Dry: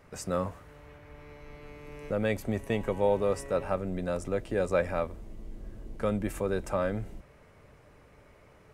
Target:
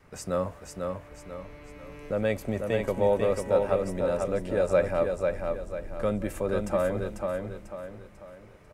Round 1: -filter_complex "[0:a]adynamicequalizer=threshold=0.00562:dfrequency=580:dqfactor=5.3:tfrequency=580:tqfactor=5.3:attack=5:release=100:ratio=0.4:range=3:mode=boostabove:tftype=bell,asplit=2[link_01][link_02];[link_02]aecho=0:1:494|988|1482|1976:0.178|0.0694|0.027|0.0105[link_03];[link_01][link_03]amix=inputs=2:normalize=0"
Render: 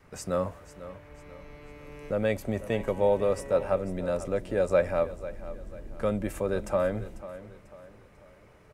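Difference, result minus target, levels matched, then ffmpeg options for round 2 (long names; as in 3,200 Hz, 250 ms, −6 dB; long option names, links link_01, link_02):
echo-to-direct −10.5 dB
-filter_complex "[0:a]adynamicequalizer=threshold=0.00562:dfrequency=580:dqfactor=5.3:tfrequency=580:tqfactor=5.3:attack=5:release=100:ratio=0.4:range=3:mode=boostabove:tftype=bell,asplit=2[link_01][link_02];[link_02]aecho=0:1:494|988|1482|1976|2470:0.596|0.232|0.0906|0.0353|0.0138[link_03];[link_01][link_03]amix=inputs=2:normalize=0"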